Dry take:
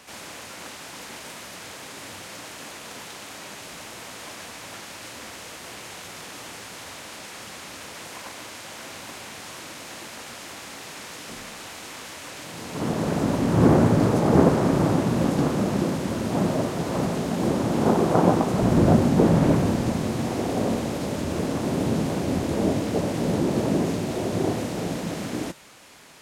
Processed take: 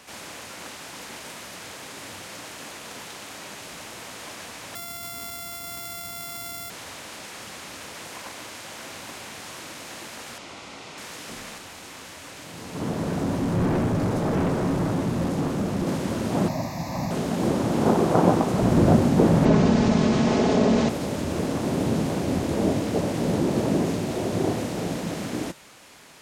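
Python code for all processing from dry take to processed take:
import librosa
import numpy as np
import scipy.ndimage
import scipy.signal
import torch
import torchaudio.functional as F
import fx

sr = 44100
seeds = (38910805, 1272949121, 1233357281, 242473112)

y = fx.chain(x, sr, fx.sample_sort(block=64),
    fx.high_shelf(hz=6700.0, db=12.0),
    fx.comb(ms=0.9, depth=0.43), at=(4.75, 6.7))
y = fx.chain(y, sr, fx.air_absorb(metres=73.0),
    fx.notch(hz=1700.0, q=5.8), at=(10.38, 10.98))
y = fx.chain(y, sr, fx.clip_hard(threshold_db=-19.0),
    fx.low_shelf(hz=200.0, db=4.0),
    fx.comb_fb(f0_hz=90.0, decay_s=0.17, harmonics='all', damping=0.0, mix_pct=50), at=(11.58, 15.87))
y = fx.chain(y, sr, fx.high_shelf(hz=11000.0, db=10.0),
    fx.fixed_phaser(hz=2100.0, stages=8), at=(16.48, 17.11))
y = fx.chain(y, sr, fx.lowpass(hz=6600.0, slope=24),
    fx.comb(ms=4.7, depth=0.52),
    fx.env_flatten(amount_pct=50), at=(19.45, 20.89))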